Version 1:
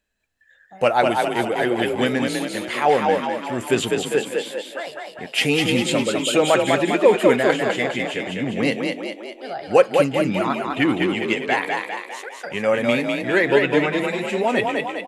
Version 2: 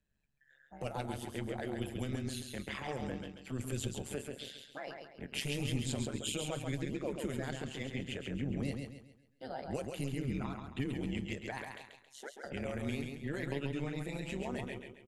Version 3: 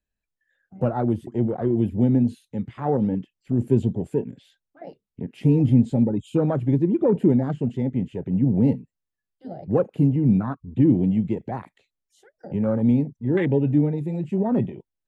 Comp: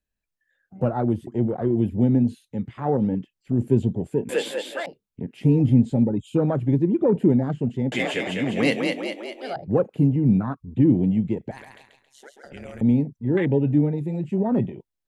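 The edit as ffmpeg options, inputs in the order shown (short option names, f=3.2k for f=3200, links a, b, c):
-filter_complex "[0:a]asplit=2[a][b];[2:a]asplit=4[c][d][e][f];[c]atrim=end=4.292[g];[a]atrim=start=4.288:end=4.862[h];[d]atrim=start=4.858:end=7.922[i];[b]atrim=start=7.918:end=9.562[j];[e]atrim=start=9.558:end=11.512[k];[1:a]atrim=start=11.508:end=12.812[l];[f]atrim=start=12.808[m];[g][h]acrossfade=d=0.004:c1=hsin:c2=hsin[n];[n][i]acrossfade=d=0.004:c1=hsin:c2=hsin[o];[o][j]acrossfade=d=0.004:c1=hsin:c2=hsin[p];[p][k]acrossfade=d=0.004:c1=hsin:c2=hsin[q];[q][l]acrossfade=d=0.004:c1=hsin:c2=hsin[r];[r][m]acrossfade=d=0.004:c1=hsin:c2=hsin"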